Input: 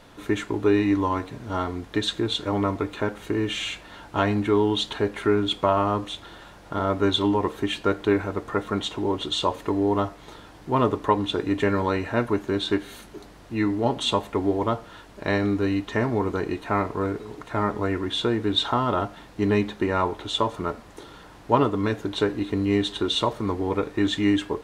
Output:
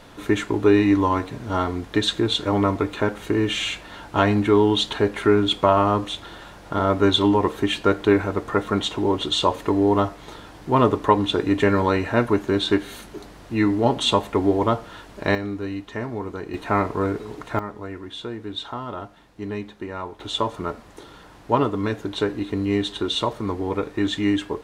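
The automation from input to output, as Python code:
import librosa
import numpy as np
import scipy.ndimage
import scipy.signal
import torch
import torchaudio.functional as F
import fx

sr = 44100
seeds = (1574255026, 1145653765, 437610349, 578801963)

y = fx.gain(x, sr, db=fx.steps((0.0, 4.0), (15.35, -5.5), (16.54, 3.0), (17.59, -8.5), (20.2, 0.0)))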